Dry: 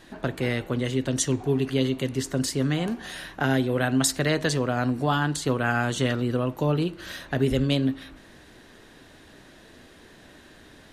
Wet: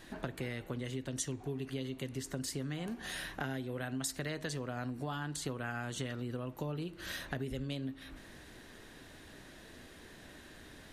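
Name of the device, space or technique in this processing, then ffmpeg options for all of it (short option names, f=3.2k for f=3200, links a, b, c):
ASMR close-microphone chain: -af "lowshelf=f=120:g=4,equalizer=f=2k:t=o:w=0.77:g=2,acompressor=threshold=-32dB:ratio=5,highshelf=f=7.8k:g=6.5,volume=-4.5dB"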